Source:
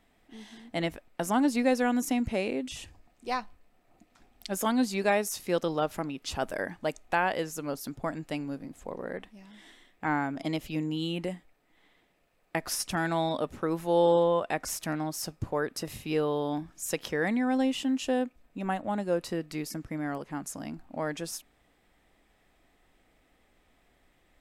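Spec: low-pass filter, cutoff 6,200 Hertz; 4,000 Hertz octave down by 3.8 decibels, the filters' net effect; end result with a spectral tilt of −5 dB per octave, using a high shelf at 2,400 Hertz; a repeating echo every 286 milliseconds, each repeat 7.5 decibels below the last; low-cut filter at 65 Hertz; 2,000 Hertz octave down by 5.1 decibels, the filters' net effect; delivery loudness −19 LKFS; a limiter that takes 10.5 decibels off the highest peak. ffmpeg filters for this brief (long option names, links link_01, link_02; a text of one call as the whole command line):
ffmpeg -i in.wav -af "highpass=65,lowpass=6200,equalizer=frequency=2000:width_type=o:gain=-8,highshelf=frequency=2400:gain=6,equalizer=frequency=4000:width_type=o:gain=-7.5,alimiter=limit=-24dB:level=0:latency=1,aecho=1:1:286|572|858|1144|1430:0.422|0.177|0.0744|0.0312|0.0131,volume=15.5dB" out.wav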